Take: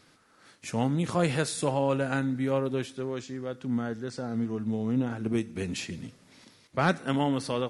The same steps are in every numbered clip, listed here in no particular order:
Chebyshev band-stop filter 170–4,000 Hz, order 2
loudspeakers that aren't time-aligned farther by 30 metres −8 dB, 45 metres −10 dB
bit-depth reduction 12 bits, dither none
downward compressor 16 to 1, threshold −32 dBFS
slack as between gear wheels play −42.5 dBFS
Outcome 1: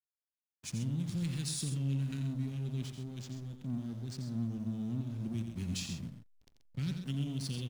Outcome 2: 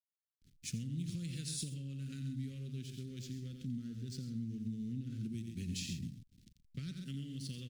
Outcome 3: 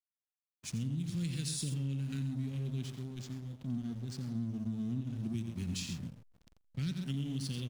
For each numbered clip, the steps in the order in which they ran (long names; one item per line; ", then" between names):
Chebyshev band-stop filter, then downward compressor, then slack as between gear wheels, then bit-depth reduction, then loudspeakers that aren't time-aligned
loudspeakers that aren't time-aligned, then slack as between gear wheels, then bit-depth reduction, then downward compressor, then Chebyshev band-stop filter
loudspeakers that aren't time-aligned, then bit-depth reduction, then Chebyshev band-stop filter, then slack as between gear wheels, then downward compressor